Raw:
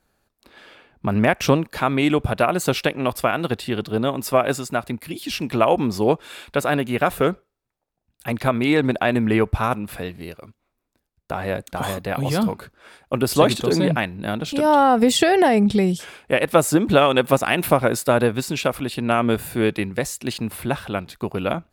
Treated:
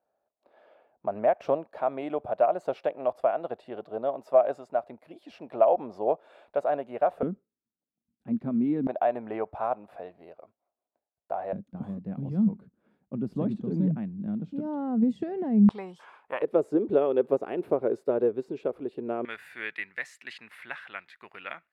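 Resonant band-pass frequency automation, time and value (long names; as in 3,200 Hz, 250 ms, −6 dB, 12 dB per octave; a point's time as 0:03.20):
resonant band-pass, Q 4
640 Hz
from 0:07.23 230 Hz
from 0:08.87 680 Hz
from 0:11.53 200 Hz
from 0:15.69 1,000 Hz
from 0:16.42 410 Hz
from 0:19.25 1,900 Hz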